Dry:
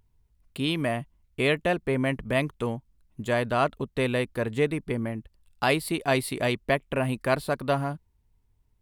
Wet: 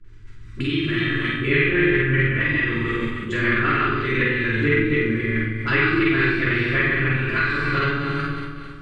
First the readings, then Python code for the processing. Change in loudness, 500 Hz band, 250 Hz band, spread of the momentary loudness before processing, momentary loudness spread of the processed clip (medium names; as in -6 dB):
+7.0 dB, +1.5 dB, +7.5 dB, 9 LU, 7 LU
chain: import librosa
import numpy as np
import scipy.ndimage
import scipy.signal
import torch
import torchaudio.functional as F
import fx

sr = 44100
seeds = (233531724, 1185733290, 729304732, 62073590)

y = fx.reverse_delay_fb(x, sr, ms=136, feedback_pct=47, wet_db=-0.5)
y = fx.room_flutter(y, sr, wall_m=7.8, rt60_s=0.7)
y = fx.level_steps(y, sr, step_db=10)
y = fx.dispersion(y, sr, late='highs', ms=48.0, hz=630.0)
y = fx.transient(y, sr, attack_db=1, sustain_db=8)
y = fx.curve_eq(y, sr, hz=(370.0, 690.0, 1500.0, 5400.0), db=(0, -23, 10, -3))
y = fx.env_lowpass_down(y, sr, base_hz=2900.0, full_db=-19.0)
y = scipy.signal.sosfilt(scipy.signal.butter(4, 7500.0, 'lowpass', fs=sr, output='sos'), y)
y = fx.doubler(y, sr, ms=48.0, db=-2.0)
y = fx.room_shoebox(y, sr, seeds[0], volume_m3=130.0, walls='furnished', distance_m=3.0)
y = fx.band_squash(y, sr, depth_pct=70)
y = y * 10.0 ** (-6.0 / 20.0)